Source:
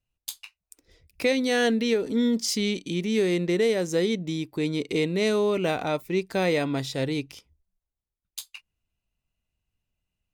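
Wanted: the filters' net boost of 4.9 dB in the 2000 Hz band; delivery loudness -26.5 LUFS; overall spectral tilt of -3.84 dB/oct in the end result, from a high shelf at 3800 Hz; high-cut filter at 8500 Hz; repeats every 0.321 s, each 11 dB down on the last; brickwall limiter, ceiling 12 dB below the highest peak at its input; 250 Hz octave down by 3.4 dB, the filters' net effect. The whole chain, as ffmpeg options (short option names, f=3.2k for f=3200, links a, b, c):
-af "lowpass=8.5k,equalizer=f=250:t=o:g=-4.5,equalizer=f=2k:t=o:g=4,highshelf=f=3.8k:g=7,alimiter=limit=-21dB:level=0:latency=1,aecho=1:1:321|642|963:0.282|0.0789|0.0221,volume=3.5dB"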